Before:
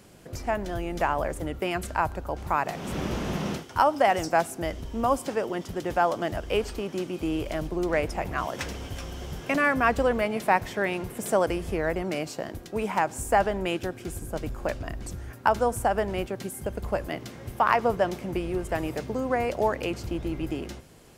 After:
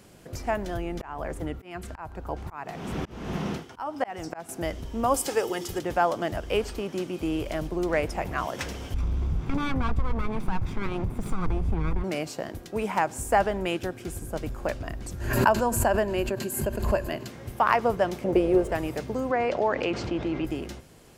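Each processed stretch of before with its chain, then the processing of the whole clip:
0.77–4.49 high shelf 4100 Hz -7 dB + notch 570 Hz, Q 8.9 + auto swell 0.314 s
5.14–5.79 high shelf 3600 Hz +11.5 dB + notches 50/100/150/200/250/300/350 Hz + comb 2.4 ms, depth 47%
8.94–12.04 minimum comb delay 0.84 ms + tilt -3.5 dB/oct + compressor 2.5:1, threshold -23 dBFS
15.2–17.28 ripple EQ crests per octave 1.4, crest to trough 8 dB + backwards sustainer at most 56 dB/s
18.24–18.72 median filter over 3 samples + bell 500 Hz +14 dB 1.2 oct + mismatched tape noise reduction decoder only
19.31–20.45 HPF 260 Hz 6 dB/oct + air absorption 140 m + fast leveller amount 50%
whole clip: dry

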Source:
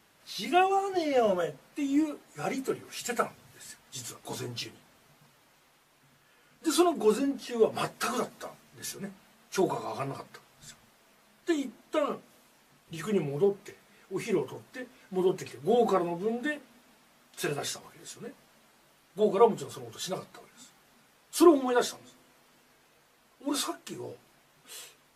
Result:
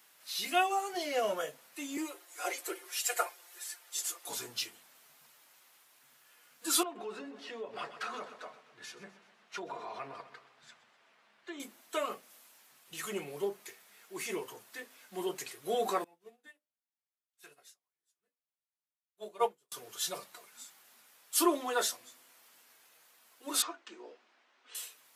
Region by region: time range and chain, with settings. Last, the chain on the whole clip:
1.97–4.27 elliptic high-pass 320 Hz + comb 5.7 ms, depth 74%
6.83–11.6 LPF 2900 Hz + feedback echo 0.126 s, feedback 53%, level -16.5 dB + compressor 2.5:1, threshold -33 dBFS
16.04–19.72 notches 60/120/180/240/300/360/420/480/540/600 Hz + upward expander 2.5:1, over -45 dBFS
23.62–24.75 Chebyshev band-pass 220–9100 Hz, order 5 + air absorption 210 m
whole clip: HPF 1100 Hz 6 dB/oct; high shelf 10000 Hz +12 dB

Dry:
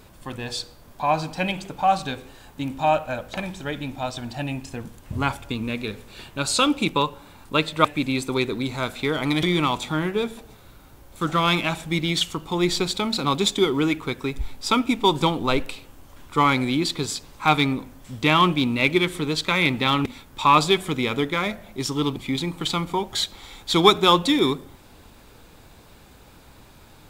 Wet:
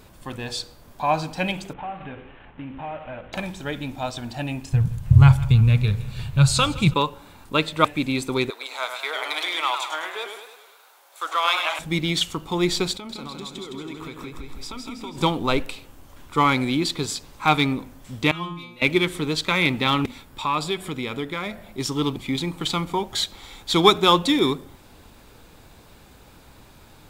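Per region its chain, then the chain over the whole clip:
1.73–3.33 CVSD 16 kbps + compressor 3:1, threshold -33 dBFS
4.72–6.94 resonant low shelf 190 Hz +13 dB, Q 3 + feedback echo 0.164 s, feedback 60%, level -19 dB
8.5–11.79 HPF 610 Hz 24 dB/oct + warbling echo 0.103 s, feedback 53%, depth 124 cents, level -7 dB
12.93–15.18 compressor 20:1, threshold -32 dBFS + feedback echo 0.162 s, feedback 50%, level -4 dB
18.31–18.82 metallic resonator 170 Hz, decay 0.61 s, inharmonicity 0.002 + three-band squash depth 40%
20.26–21.78 notch 6200 Hz, Q 9.7 + compressor 1.5:1, threshold -33 dBFS
whole clip: dry

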